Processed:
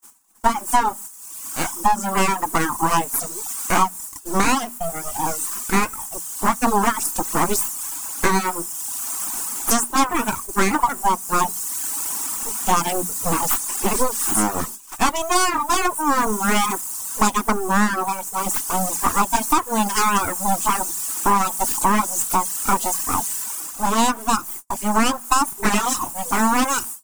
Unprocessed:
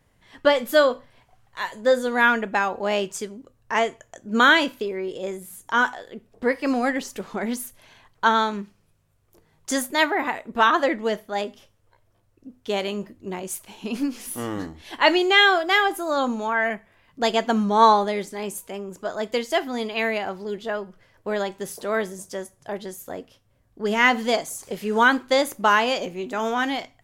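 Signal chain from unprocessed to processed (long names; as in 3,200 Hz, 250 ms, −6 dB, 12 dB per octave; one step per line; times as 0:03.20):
pitch glide at a constant tempo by −4 semitones ending unshifted
full-wave rectification
in parallel at −4 dB: bit-depth reduction 6 bits, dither triangular
on the sum: low-shelf EQ 80 Hz −8.5 dB
mains-hum notches 60/120/180/240 Hz
reverb reduction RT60 1.1 s
automatic gain control gain up to 10.5 dB
noise gate −37 dBFS, range −41 dB
graphic EQ with 10 bands 125 Hz −9 dB, 250 Hz +8 dB, 500 Hz −10 dB, 1,000 Hz +9 dB, 2,000 Hz −7 dB, 4,000 Hz −11 dB, 8,000 Hz +11 dB
downward compressor 6 to 1, threshold −17 dBFS, peak gain reduction 10 dB
notch filter 610 Hz, Q 12
level +4 dB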